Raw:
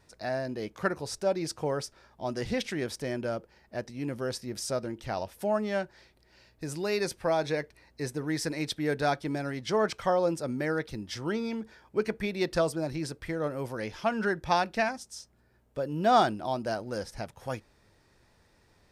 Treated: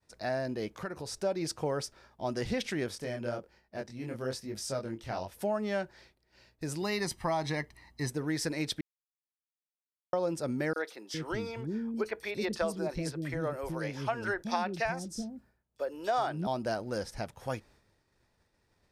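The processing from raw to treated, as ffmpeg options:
ffmpeg -i in.wav -filter_complex "[0:a]asettb=1/sr,asplit=3[link_01][link_02][link_03];[link_01]atrim=end=0.714[link_04];[link_02]atrim=start=0.71:end=1.18,asetpts=PTS-STARTPTS,afade=type=in:duration=0.004:curve=qsin,afade=type=out:start_time=0.466:duration=0.004:curve=qsin,acompressor=threshold=-36dB:ratio=3:attack=3.2:release=140:knee=1:detection=peak[link_05];[link_03]atrim=start=1.176[link_06];[link_04][link_05]acrossfade=duration=0.004:curve1=hsin:curve2=qsin[link_07];[link_07][link_06]acrossfade=duration=0.004:curve1=qsin:curve2=hsin,asplit=3[link_08][link_09][link_10];[link_08]afade=type=out:start_time=2.88:duration=0.02[link_11];[link_09]flanger=delay=19:depth=7.3:speed=1.1,afade=type=in:start_time=2.88:duration=0.02,afade=type=out:start_time=5.31:duration=0.02[link_12];[link_10]afade=type=in:start_time=5.31:duration=0.02[link_13];[link_11][link_12][link_13]amix=inputs=3:normalize=0,asettb=1/sr,asplit=3[link_14][link_15][link_16];[link_14]atrim=end=6.824[link_17];[link_15]atrim=start=6.82:end=8.1,asetpts=PTS-STARTPTS,afade=type=in:duration=0.004:curve=qsin,afade=type=out:start_time=1.276:duration=0.004:curve=qsin,aecho=1:1:1:0.65,atrim=end_sample=56448[link_18];[link_16]atrim=start=8.096[link_19];[link_17][link_18]acrossfade=duration=0.004:curve1=hsin:curve2=qsin[link_20];[link_20][link_19]acrossfade=duration=0.004:curve1=qsin:curve2=hsin,asettb=1/sr,asplit=3[link_21][link_22][link_23];[link_21]atrim=end=10.734[link_24];[link_22]atrim=start=10.73:end=16.47,asetpts=PTS-STARTPTS,afade=type=in:duration=0.004:curve=qsin,afade=type=out:start_time=5.736:duration=0.004:curve=qsin,acrossover=split=350|3800[link_25][link_26][link_27];[link_26]adelay=30[link_28];[link_25]adelay=410[link_29];[link_29][link_28][link_27]amix=inputs=3:normalize=0,atrim=end_sample=253134[link_30];[link_23]atrim=start=16.466[link_31];[link_24][link_30]acrossfade=duration=0.004:curve1=hsin:curve2=qsin[link_32];[link_32][link_31]acrossfade=duration=0.004:curve1=qsin:curve2=hsin,asplit=3[link_33][link_34][link_35];[link_33]atrim=end=8.81,asetpts=PTS-STARTPTS,afade=type=out:start_time=8.806:duration=0.004:curve=hsin[link_36];[link_34]atrim=start=8.81:end=10.13,asetpts=PTS-STARTPTS,volume=0[link_37];[link_35]atrim=start=10.13,asetpts=PTS-STARTPTS,afade=type=in:duration=0.004:curve=hsin[link_38];[link_36][link_37][link_38]concat=n=3:v=0:a=1,agate=range=-33dB:threshold=-56dB:ratio=3:detection=peak,acompressor=threshold=-27dB:ratio=5" out.wav

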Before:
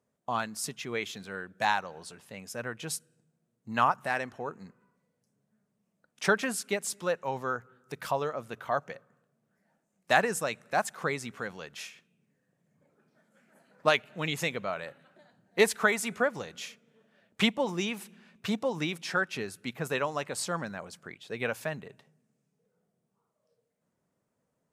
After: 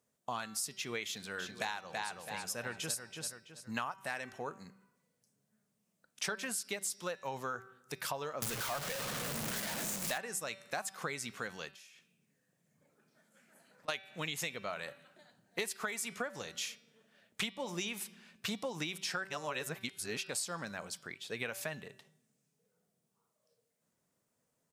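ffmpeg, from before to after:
ffmpeg -i in.wav -filter_complex "[0:a]asplit=3[link_01][link_02][link_03];[link_01]afade=type=out:start_time=1.38:duration=0.02[link_04];[link_02]asplit=2[link_05][link_06];[link_06]adelay=330,lowpass=frequency=4900:poles=1,volume=-5dB,asplit=2[link_07][link_08];[link_08]adelay=330,lowpass=frequency=4900:poles=1,volume=0.35,asplit=2[link_09][link_10];[link_10]adelay=330,lowpass=frequency=4900:poles=1,volume=0.35,asplit=2[link_11][link_12];[link_12]adelay=330,lowpass=frequency=4900:poles=1,volume=0.35[link_13];[link_05][link_07][link_09][link_11][link_13]amix=inputs=5:normalize=0,afade=type=in:start_time=1.38:duration=0.02,afade=type=out:start_time=3.86:duration=0.02[link_14];[link_03]afade=type=in:start_time=3.86:duration=0.02[link_15];[link_04][link_14][link_15]amix=inputs=3:normalize=0,asettb=1/sr,asplit=3[link_16][link_17][link_18];[link_16]atrim=end=8.424[link_19];[link_17]atrim=start=8.42:end=10.18,asetpts=PTS-STARTPTS,afade=type=in:duration=0.004:curve=qsin,afade=type=out:start_time=1.756:duration=0.004:curve=qsin,aeval=exprs='val(0)+0.5*0.0531*sgn(val(0))':channel_layout=same[link_20];[link_18]atrim=start=10.176[link_21];[link_19][link_20]acrossfade=duration=0.004:curve1=hsin:curve2=qsin[link_22];[link_22][link_21]acrossfade=duration=0.004:curve1=qsin:curve2=hsin,asplit=3[link_23][link_24][link_25];[link_23]afade=type=out:start_time=11.7:duration=0.02[link_26];[link_24]acompressor=threshold=-57dB:ratio=12:attack=3.2:release=140:knee=1:detection=peak,afade=type=in:start_time=11.7:duration=0.02,afade=type=out:start_time=13.88:duration=0.02[link_27];[link_25]afade=type=in:start_time=13.88:duration=0.02[link_28];[link_26][link_27][link_28]amix=inputs=3:normalize=0,asplit=3[link_29][link_30][link_31];[link_29]atrim=end=19.252[link_32];[link_30]atrim=start=19.248:end=20.292,asetpts=PTS-STARTPTS,areverse[link_33];[link_31]atrim=start=20.288[link_34];[link_32][link_33]acrossfade=duration=0.004:curve1=hsin:curve2=hsin[link_35];[link_35][link_34]acrossfade=duration=0.004:curve1=hsin:curve2=hsin,highshelf=frequency=2400:gain=11,bandreject=frequency=192.5:width_type=h:width=4,bandreject=frequency=385:width_type=h:width=4,bandreject=frequency=577.5:width_type=h:width=4,bandreject=frequency=770:width_type=h:width=4,bandreject=frequency=962.5:width_type=h:width=4,bandreject=frequency=1155:width_type=h:width=4,bandreject=frequency=1347.5:width_type=h:width=4,bandreject=frequency=1540:width_type=h:width=4,bandreject=frequency=1732.5:width_type=h:width=4,bandreject=frequency=1925:width_type=h:width=4,bandreject=frequency=2117.5:width_type=h:width=4,bandreject=frequency=2310:width_type=h:width=4,bandreject=frequency=2502.5:width_type=h:width=4,bandreject=frequency=2695:width_type=h:width=4,bandreject=frequency=2887.5:width_type=h:width=4,bandreject=frequency=3080:width_type=h:width=4,bandreject=frequency=3272.5:width_type=h:width=4,bandreject=frequency=3465:width_type=h:width=4,bandreject=frequency=3657.5:width_type=h:width=4,bandreject=frequency=3850:width_type=h:width=4,bandreject=frequency=4042.5:width_type=h:width=4,bandreject=frequency=4235:width_type=h:width=4,bandreject=frequency=4427.5:width_type=h:width=4,bandreject=frequency=4620:width_type=h:width=4,bandreject=frequency=4812.5:width_type=h:width=4,bandreject=frequency=5005:width_type=h:width=4,bandreject=frequency=5197.5:width_type=h:width=4,bandreject=frequency=5390:width_type=h:width=4,bandreject=frequency=5582.5:width_type=h:width=4,bandreject=frequency=5775:width_type=h:width=4,acompressor=threshold=-30dB:ratio=10,volume=-4dB" out.wav

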